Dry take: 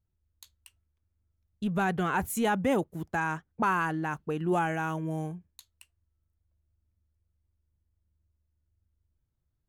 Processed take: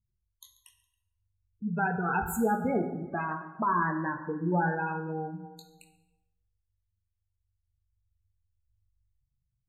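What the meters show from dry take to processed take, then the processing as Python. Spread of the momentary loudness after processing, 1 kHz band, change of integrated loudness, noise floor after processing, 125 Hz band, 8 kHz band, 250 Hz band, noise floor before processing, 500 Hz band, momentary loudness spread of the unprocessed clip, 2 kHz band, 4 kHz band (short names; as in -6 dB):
9 LU, +0.5 dB, -0.5 dB, -82 dBFS, -0.5 dB, -4.0 dB, -0.5 dB, -80 dBFS, -1.5 dB, 7 LU, -1.0 dB, under -10 dB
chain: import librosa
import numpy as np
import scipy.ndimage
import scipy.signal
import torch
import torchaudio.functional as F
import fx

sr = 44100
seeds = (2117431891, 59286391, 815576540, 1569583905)

p1 = fx.spec_ripple(x, sr, per_octave=1.2, drift_hz=-0.31, depth_db=9)
p2 = fx.doubler(p1, sr, ms=23.0, db=-7.0)
p3 = p2 + fx.echo_feedback(p2, sr, ms=138, feedback_pct=59, wet_db=-17.5, dry=0)
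p4 = fx.spec_gate(p3, sr, threshold_db=-15, keep='strong')
p5 = fx.rev_plate(p4, sr, seeds[0], rt60_s=1.0, hf_ratio=0.7, predelay_ms=0, drr_db=6.0)
y = F.gain(torch.from_numpy(p5), -2.5).numpy()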